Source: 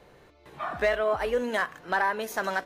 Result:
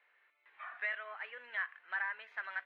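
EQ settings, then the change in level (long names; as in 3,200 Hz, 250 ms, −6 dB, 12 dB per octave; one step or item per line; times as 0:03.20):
four-pole ladder band-pass 2,400 Hz, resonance 40%
high-frequency loss of the air 490 metres
+6.5 dB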